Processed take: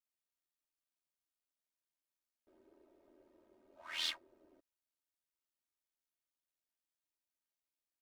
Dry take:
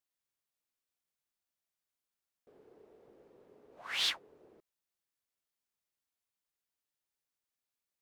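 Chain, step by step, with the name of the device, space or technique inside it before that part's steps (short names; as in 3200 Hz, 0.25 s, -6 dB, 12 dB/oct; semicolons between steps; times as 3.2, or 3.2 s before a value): ring-modulated robot voice (ring modulator 41 Hz; comb 3.2 ms, depth 98%); gain -6 dB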